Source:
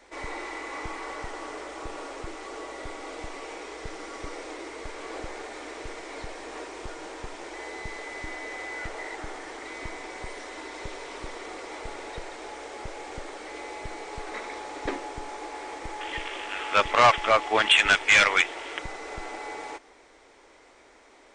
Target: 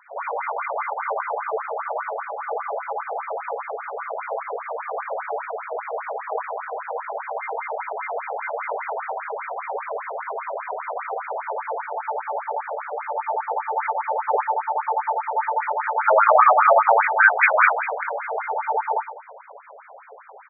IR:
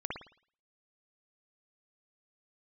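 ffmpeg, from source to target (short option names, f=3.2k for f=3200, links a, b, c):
-filter_complex "[0:a]asplit=5[a][b][c][d][e];[b]adelay=256,afreqshift=35,volume=-23dB[f];[c]adelay=512,afreqshift=70,volume=-27.3dB[g];[d]adelay=768,afreqshift=105,volume=-31.6dB[h];[e]adelay=1024,afreqshift=140,volume=-35.9dB[i];[a][f][g][h][i]amix=inputs=5:normalize=0,acrossover=split=440[j][k];[j]asoftclip=type=tanh:threshold=-38dB[l];[l][k]amix=inputs=2:normalize=0,equalizer=f=2.1k:t=o:w=0.87:g=-9.5,bandreject=f=480:w=13,asetrate=45938,aresample=44100[m];[1:a]atrim=start_sample=2205[n];[m][n]afir=irnorm=-1:irlink=0,alimiter=level_in=15dB:limit=-1dB:release=50:level=0:latency=1,afftfilt=real='re*between(b*sr/1024,550*pow(1800/550,0.5+0.5*sin(2*PI*5*pts/sr))/1.41,550*pow(1800/550,0.5+0.5*sin(2*PI*5*pts/sr))*1.41)':imag='im*between(b*sr/1024,550*pow(1800/550,0.5+0.5*sin(2*PI*5*pts/sr))/1.41,550*pow(1800/550,0.5+0.5*sin(2*PI*5*pts/sr))*1.41)':win_size=1024:overlap=0.75"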